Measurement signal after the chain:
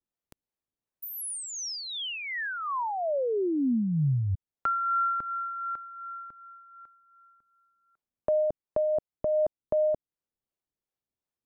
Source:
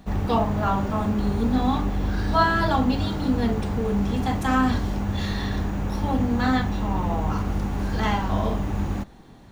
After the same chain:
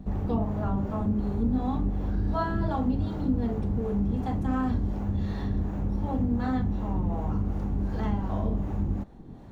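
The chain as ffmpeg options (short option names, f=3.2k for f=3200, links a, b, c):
-filter_complex "[0:a]acrossover=split=410[a][b];[a]aeval=exprs='val(0)*(1-0.5/2+0.5/2*cos(2*PI*2.7*n/s))':c=same[c];[b]aeval=exprs='val(0)*(1-0.5/2-0.5/2*cos(2*PI*2.7*n/s))':c=same[d];[c][d]amix=inputs=2:normalize=0,tiltshelf=f=970:g=8.5,acompressor=threshold=-37dB:ratio=1.5,volume=-1dB"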